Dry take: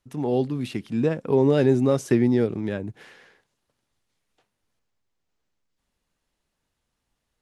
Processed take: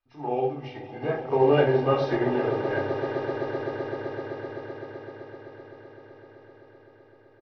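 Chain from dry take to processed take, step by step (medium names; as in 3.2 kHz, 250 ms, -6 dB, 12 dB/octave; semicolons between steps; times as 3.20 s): knee-point frequency compression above 1.6 kHz 1.5:1; low-pass 3.6 kHz 12 dB/octave; resonant low shelf 450 Hz -9.5 dB, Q 1.5; comb 2.5 ms, depth 54%; on a send: echo with a slow build-up 128 ms, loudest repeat 8, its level -12.5 dB; on the sum: simulated room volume 590 m³, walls furnished, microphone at 2.7 m; upward expansion 1.5:1, over -35 dBFS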